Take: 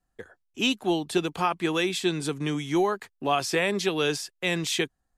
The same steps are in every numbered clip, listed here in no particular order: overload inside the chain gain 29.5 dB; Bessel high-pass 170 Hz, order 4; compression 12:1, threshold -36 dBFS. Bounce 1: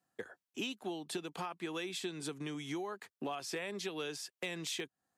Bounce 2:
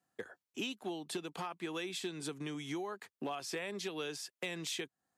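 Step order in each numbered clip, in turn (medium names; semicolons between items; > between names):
compression > Bessel high-pass > overload inside the chain; compression > overload inside the chain > Bessel high-pass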